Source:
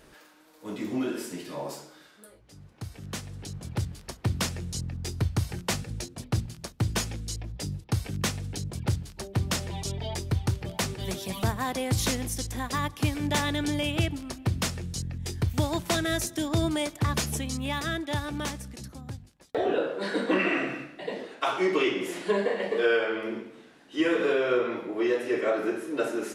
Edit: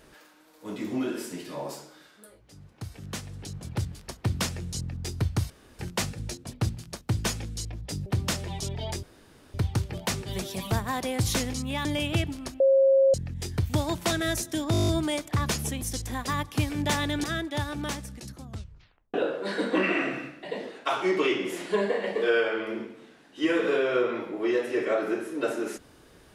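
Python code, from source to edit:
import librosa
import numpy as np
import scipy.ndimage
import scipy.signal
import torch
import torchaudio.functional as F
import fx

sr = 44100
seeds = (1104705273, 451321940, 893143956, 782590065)

y = fx.edit(x, sr, fx.insert_room_tone(at_s=5.5, length_s=0.29),
    fx.cut(start_s=7.77, length_s=1.52),
    fx.insert_room_tone(at_s=10.26, length_s=0.51),
    fx.swap(start_s=12.26, length_s=1.43, other_s=17.49, other_length_s=0.31),
    fx.bleep(start_s=14.44, length_s=0.54, hz=540.0, db=-16.0),
    fx.stutter(start_s=16.56, slice_s=0.02, count=9),
    fx.tape_stop(start_s=19.0, length_s=0.7), tone=tone)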